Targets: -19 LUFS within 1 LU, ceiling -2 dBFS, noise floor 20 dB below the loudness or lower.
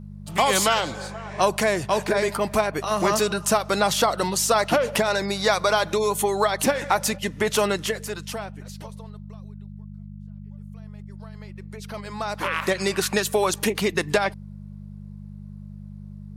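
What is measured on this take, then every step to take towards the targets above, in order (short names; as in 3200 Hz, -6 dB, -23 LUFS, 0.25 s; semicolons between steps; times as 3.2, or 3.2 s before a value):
hum 50 Hz; harmonics up to 200 Hz; hum level -36 dBFS; loudness -23.0 LUFS; peak -7.0 dBFS; loudness target -19.0 LUFS
-> de-hum 50 Hz, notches 4; gain +4 dB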